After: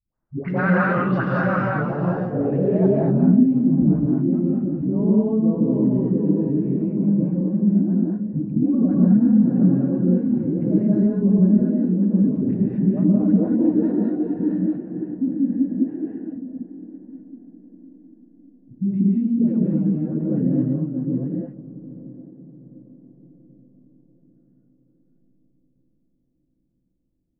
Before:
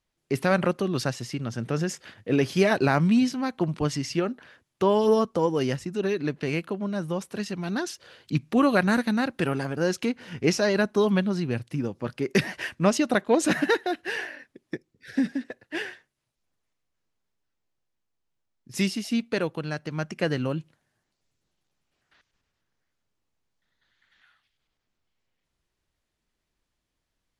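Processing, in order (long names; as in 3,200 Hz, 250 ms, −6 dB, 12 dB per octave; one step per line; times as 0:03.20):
delay that plays each chunk backwards 481 ms, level −4 dB
parametric band 390 Hz −7.5 dB 0.34 octaves
feedback delay with all-pass diffusion 767 ms, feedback 48%, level −15.5 dB
low-pass filter sweep 1,500 Hz → 280 Hz, 0:01.24–0:03.20
0:11.38–0:12.22: Butterworth high-pass 180 Hz 72 dB per octave
all-pass dispersion highs, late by 146 ms, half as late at 420 Hz
low-pass that shuts in the quiet parts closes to 940 Hz, open at −17 dBFS
brickwall limiter −16 dBFS, peak gain reduction 9.5 dB
reverb whose tail is shaped and stops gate 260 ms rising, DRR −3.5 dB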